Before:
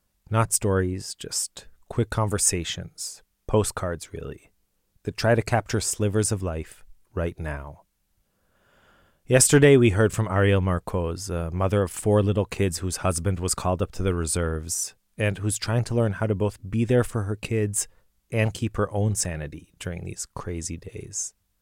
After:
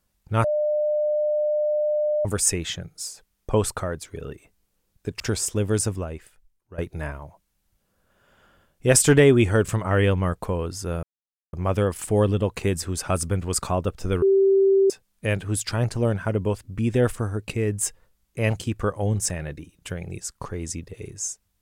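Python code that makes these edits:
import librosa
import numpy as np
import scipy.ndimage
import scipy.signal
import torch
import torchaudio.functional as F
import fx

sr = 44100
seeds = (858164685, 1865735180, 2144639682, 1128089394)

y = fx.edit(x, sr, fx.bleep(start_s=0.44, length_s=1.81, hz=601.0, db=-19.5),
    fx.cut(start_s=5.2, length_s=0.45),
    fx.fade_out_to(start_s=6.38, length_s=0.85, curve='qua', floor_db=-15.5),
    fx.insert_silence(at_s=11.48, length_s=0.5),
    fx.bleep(start_s=14.17, length_s=0.68, hz=389.0, db=-14.0), tone=tone)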